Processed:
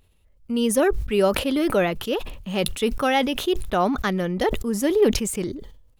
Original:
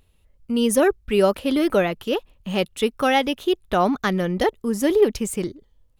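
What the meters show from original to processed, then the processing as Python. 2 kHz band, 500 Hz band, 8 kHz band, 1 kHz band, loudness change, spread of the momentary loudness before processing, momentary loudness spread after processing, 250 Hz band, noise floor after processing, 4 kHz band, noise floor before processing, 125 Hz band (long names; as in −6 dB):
−1.0 dB, −1.5 dB, +1.0 dB, −1.5 dB, −1.5 dB, 8 LU, 9 LU, −1.0 dB, −60 dBFS, 0.0 dB, −61 dBFS, 0.0 dB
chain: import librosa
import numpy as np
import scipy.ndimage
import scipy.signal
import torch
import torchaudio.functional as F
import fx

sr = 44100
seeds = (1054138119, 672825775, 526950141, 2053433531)

y = fx.sustainer(x, sr, db_per_s=66.0)
y = y * librosa.db_to_amplitude(-2.0)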